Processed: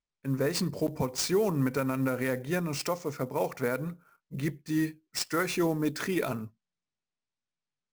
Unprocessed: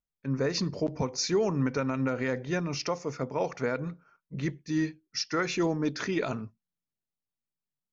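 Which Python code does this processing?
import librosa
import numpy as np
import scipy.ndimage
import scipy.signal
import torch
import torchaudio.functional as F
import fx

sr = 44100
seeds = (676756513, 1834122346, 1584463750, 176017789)

y = fx.sample_hold(x, sr, seeds[0], rate_hz=13000.0, jitter_pct=20)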